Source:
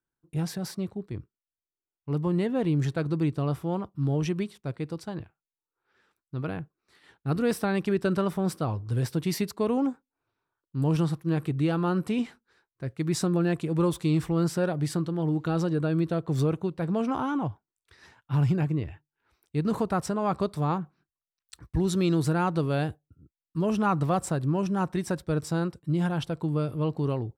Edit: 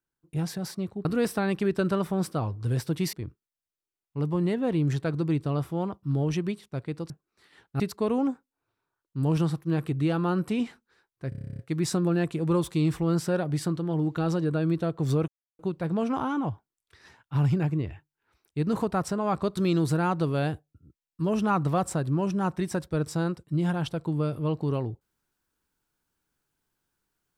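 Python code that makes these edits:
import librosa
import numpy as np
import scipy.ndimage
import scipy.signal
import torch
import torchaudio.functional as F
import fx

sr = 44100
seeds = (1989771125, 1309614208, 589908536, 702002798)

y = fx.edit(x, sr, fx.cut(start_s=5.02, length_s=1.59),
    fx.move(start_s=7.31, length_s=2.08, to_s=1.05),
    fx.stutter(start_s=12.88, slice_s=0.03, count=11),
    fx.insert_silence(at_s=16.57, length_s=0.31),
    fx.cut(start_s=20.55, length_s=1.38), tone=tone)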